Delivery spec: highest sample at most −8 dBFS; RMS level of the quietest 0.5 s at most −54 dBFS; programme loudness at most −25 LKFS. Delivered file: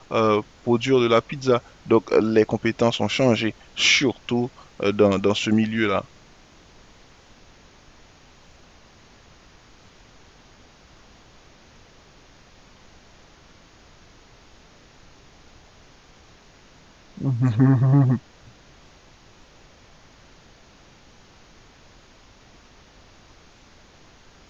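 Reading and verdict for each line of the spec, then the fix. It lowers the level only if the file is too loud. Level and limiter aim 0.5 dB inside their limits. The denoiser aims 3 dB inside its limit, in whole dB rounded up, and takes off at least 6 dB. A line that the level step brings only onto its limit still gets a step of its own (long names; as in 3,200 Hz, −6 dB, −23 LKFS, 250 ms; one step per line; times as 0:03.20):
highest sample −4.5 dBFS: out of spec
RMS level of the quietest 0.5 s −51 dBFS: out of spec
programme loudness −21.0 LKFS: out of spec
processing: level −4.5 dB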